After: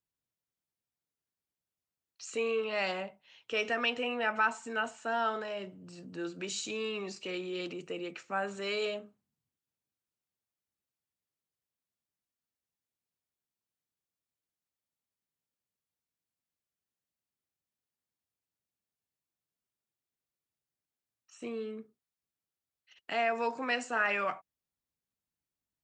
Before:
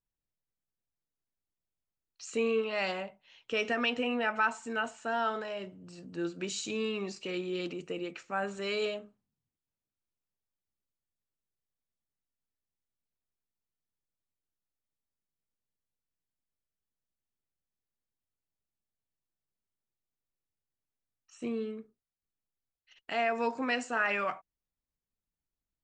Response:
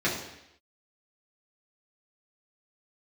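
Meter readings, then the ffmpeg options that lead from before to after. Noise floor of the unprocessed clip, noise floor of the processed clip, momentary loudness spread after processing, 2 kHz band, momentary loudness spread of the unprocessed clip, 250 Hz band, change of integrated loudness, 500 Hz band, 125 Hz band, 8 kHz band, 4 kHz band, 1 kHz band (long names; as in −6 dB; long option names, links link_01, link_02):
below −85 dBFS, below −85 dBFS, 14 LU, 0.0 dB, 12 LU, −4.5 dB, −0.5 dB, −1.0 dB, −3.5 dB, 0.0 dB, 0.0 dB, 0.0 dB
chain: -filter_complex "[0:a]highpass=78,acrossover=split=370[link_01][link_02];[link_01]alimiter=level_in=16dB:limit=-24dB:level=0:latency=1,volume=-16dB[link_03];[link_03][link_02]amix=inputs=2:normalize=0"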